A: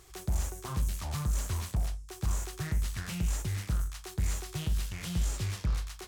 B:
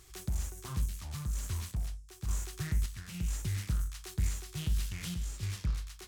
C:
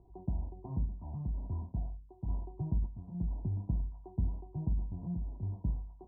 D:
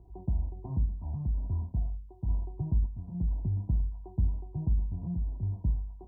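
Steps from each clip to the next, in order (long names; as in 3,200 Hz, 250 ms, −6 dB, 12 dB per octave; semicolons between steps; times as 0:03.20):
parametric band 660 Hz −7.5 dB 1.9 octaves; sample-and-hold tremolo
Chebyshev low-pass with heavy ripple 1,000 Hz, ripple 9 dB; level +7 dB
parametric band 63 Hz +8 dB 2.1 octaves; in parallel at −2.5 dB: downward compressor, threshold −34 dBFS, peak gain reduction 14 dB; on the sum: level −3.5 dB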